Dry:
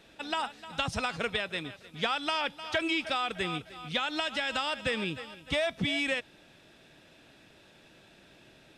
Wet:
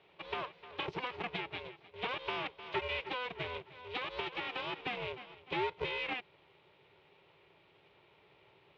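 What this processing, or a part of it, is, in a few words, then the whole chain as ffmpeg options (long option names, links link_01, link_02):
ring modulator pedal into a guitar cabinet: -af "aeval=exprs='val(0)*sgn(sin(2*PI*250*n/s))':channel_layout=same,highpass=100,equalizer=frequency=160:width_type=q:width=4:gain=6,equalizer=frequency=240:width_type=q:width=4:gain=-9,equalizer=frequency=390:width_type=q:width=4:gain=7,equalizer=frequency=900:width_type=q:width=4:gain=4,equalizer=frequency=1600:width_type=q:width=4:gain=-5,equalizer=frequency=2400:width_type=q:width=4:gain=4,lowpass=frequency=3500:width=0.5412,lowpass=frequency=3500:width=1.3066,volume=-8dB"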